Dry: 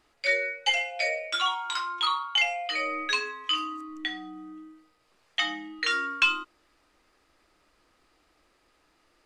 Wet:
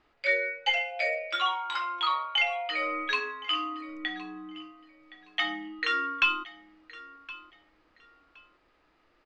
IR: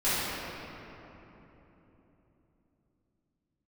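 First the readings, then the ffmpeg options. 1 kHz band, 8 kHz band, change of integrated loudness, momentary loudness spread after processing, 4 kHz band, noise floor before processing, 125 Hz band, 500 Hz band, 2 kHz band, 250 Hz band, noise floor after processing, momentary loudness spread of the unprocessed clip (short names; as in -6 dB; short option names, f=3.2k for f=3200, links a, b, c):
0.0 dB, under -10 dB, -1.5 dB, 18 LU, -3.0 dB, -68 dBFS, n/a, 0.0 dB, -1.0 dB, 0.0 dB, -68 dBFS, 10 LU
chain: -af "lowpass=3.2k,aecho=1:1:1068|2136:0.119|0.0261"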